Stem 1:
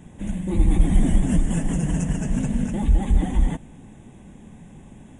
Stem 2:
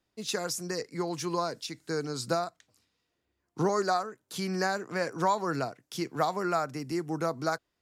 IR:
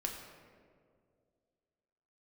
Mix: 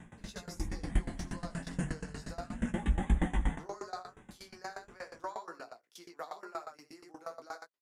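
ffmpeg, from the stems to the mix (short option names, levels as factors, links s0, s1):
-filter_complex "[0:a]equalizer=f=1500:w=0.97:g=12,volume=0.944,asplit=2[s0][s1];[s1]volume=0.188[s2];[1:a]highpass=430,volume=0.531,asplit=3[s3][s4][s5];[s4]volume=0.562[s6];[s5]apad=whole_len=229230[s7];[s0][s7]sidechaincompress=threshold=0.00224:ratio=8:attack=24:release=149[s8];[s2][s6]amix=inputs=2:normalize=0,aecho=0:1:83:1[s9];[s8][s3][s9]amix=inputs=3:normalize=0,flanger=delay=17:depth=5.7:speed=0.34,aeval=exprs='val(0)*pow(10,-20*if(lt(mod(8.4*n/s,1),2*abs(8.4)/1000),1-mod(8.4*n/s,1)/(2*abs(8.4)/1000),(mod(8.4*n/s,1)-2*abs(8.4)/1000)/(1-2*abs(8.4)/1000))/20)':c=same"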